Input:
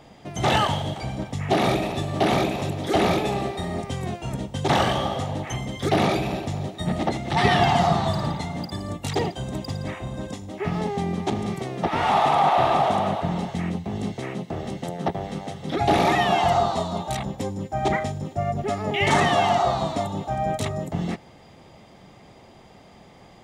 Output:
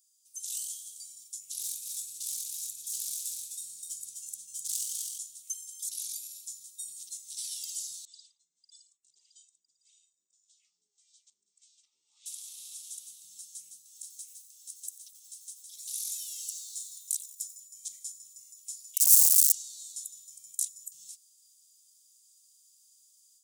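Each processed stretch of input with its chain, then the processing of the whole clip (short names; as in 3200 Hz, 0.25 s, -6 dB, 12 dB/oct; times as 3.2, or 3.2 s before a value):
1.6–5.18 self-modulated delay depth 0.097 ms + low shelf 490 Hz +7.5 dB + echo 0.255 s -4 dB
8.05–12.26 LFO band-pass sine 1.7 Hz 370–3700 Hz + Chebyshev low-pass 8700 Hz, order 8
13.84–17.6 inverse Chebyshev high-pass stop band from 710 Hz + lo-fi delay 91 ms, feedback 55%, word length 8-bit, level -14 dB
18.42–19.52 HPF 660 Hz 24 dB/oct + wrapped overs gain 16.5 dB
whole clip: inverse Chebyshev high-pass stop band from 1800 Hz, stop band 70 dB; AGC gain up to 8 dB; gain +3.5 dB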